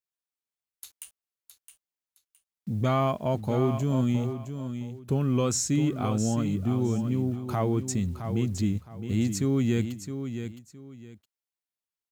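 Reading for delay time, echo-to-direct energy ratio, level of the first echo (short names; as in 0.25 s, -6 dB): 0.665 s, -8.5 dB, -9.0 dB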